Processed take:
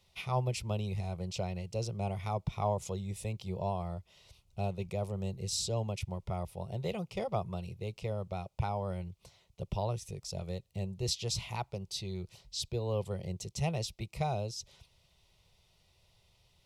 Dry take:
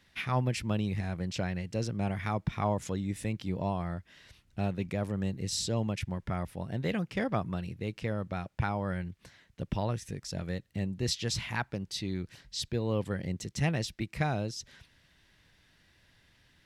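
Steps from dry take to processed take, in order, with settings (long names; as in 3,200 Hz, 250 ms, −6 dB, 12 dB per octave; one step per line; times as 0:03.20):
phaser with its sweep stopped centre 680 Hz, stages 4
hollow resonant body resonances 370/1,500/2,500 Hz, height 6 dB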